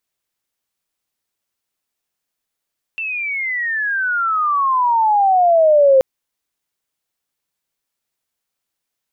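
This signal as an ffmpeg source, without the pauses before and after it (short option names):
-f lavfi -i "aevalsrc='pow(10,(-21+14*t/3.03)/20)*sin(2*PI*2700*3.03/log(520/2700)*(exp(log(520/2700)*t/3.03)-1))':d=3.03:s=44100"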